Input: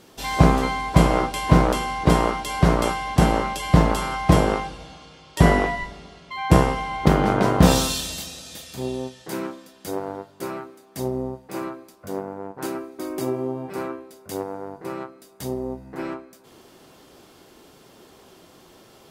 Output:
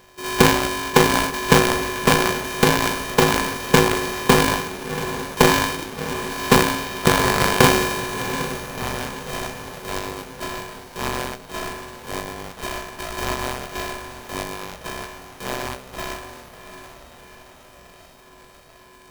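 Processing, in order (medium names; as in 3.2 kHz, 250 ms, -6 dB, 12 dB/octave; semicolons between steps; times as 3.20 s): sorted samples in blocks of 64 samples; echo that smears into a reverb 712 ms, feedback 61%, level -11 dB; polarity switched at an audio rate 320 Hz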